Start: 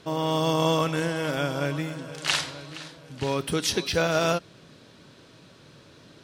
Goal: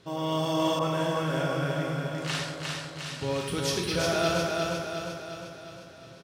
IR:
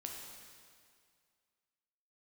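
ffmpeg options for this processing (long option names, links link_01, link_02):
-filter_complex "[0:a]equalizer=frequency=100:width=1.8:gain=5.5,asoftclip=type=hard:threshold=-13dB,aecho=1:1:355|710|1065|1420|1775|2130|2485|2840:0.708|0.389|0.214|0.118|0.0648|0.0356|0.0196|0.0108[link_01];[1:a]atrim=start_sample=2205,afade=type=out:start_time=0.33:duration=0.01,atrim=end_sample=14994,asetrate=79380,aresample=44100[link_02];[link_01][link_02]afir=irnorm=-1:irlink=0,asettb=1/sr,asplit=3[link_03][link_04][link_05];[link_03]atrim=end=0.794[link_06];[link_04]atrim=start=0.79:end=3.07,asetpts=PTS-STARTPTS,afade=type=in:duration=0.004:curve=qsin,afade=type=out:start_time=2.276:duration=0.004:curve=qsin,adynamicequalizer=threshold=0.00501:dfrequency=1900:dqfactor=0.7:tfrequency=1900:tqfactor=0.7:attack=5:release=100:ratio=0.375:range=2:mode=cutabove:tftype=highshelf[link_07];[link_05]atrim=start=3.066[link_08];[link_06][link_07]acrossfade=duration=0.004:curve1=hsin:curve2=qsin[link_09];[link_09][link_08]acrossfade=duration=0.004:curve1=qsin:curve2=hsin,volume=3.5dB"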